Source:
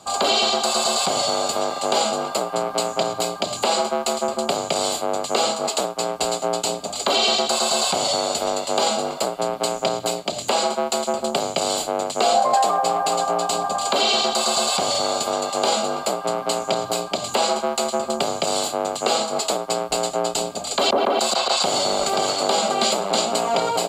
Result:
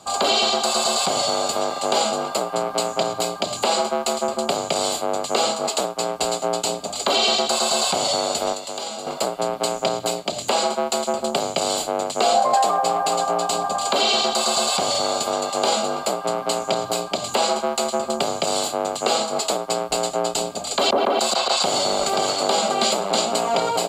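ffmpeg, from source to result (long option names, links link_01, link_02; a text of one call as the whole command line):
ffmpeg -i in.wav -filter_complex "[0:a]asettb=1/sr,asplit=3[link_01][link_02][link_03];[link_01]atrim=end=8.534[link_04];[link_02]atrim=start=8.53:end=9.07,asetpts=PTS-STARTPTS,afade=type=in:duration=0.004:curve=qsin,afade=type=out:start_time=0.536:duration=0.004:curve=qsin,acrossover=split=340|2500[link_05][link_06][link_07];[link_05]acompressor=threshold=-45dB:ratio=4[link_08];[link_06]acompressor=threshold=-32dB:ratio=4[link_09];[link_07]acompressor=threshold=-32dB:ratio=4[link_10];[link_08][link_09][link_10]amix=inputs=3:normalize=0[link_11];[link_03]atrim=start=9.066[link_12];[link_04][link_11]acrossfade=duration=0.004:curve1=hsin:curve2=qsin[link_13];[link_13][link_12]acrossfade=duration=0.004:curve1=qsin:curve2=hsin" out.wav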